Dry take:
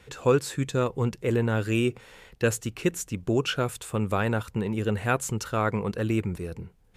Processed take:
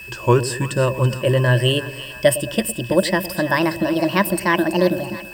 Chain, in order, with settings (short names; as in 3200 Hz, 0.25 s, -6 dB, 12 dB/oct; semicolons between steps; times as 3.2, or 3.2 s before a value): speed glide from 92% -> 169%; in parallel at -4 dB: requantised 8-bit, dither triangular; on the sum: ripple EQ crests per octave 1.3, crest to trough 14 dB; whine 2600 Hz -36 dBFS; split-band echo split 750 Hz, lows 0.109 s, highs 0.331 s, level -13 dB; gain +1.5 dB